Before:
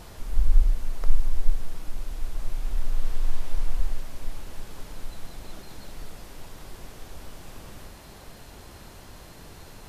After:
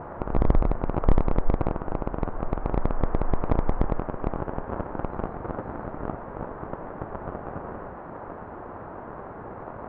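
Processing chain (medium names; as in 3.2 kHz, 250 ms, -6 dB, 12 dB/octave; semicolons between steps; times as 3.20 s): cycle switcher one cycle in 3, inverted; low-pass 1.4 kHz 24 dB/octave; overdrive pedal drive 23 dB, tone 1 kHz, clips at -4.5 dBFS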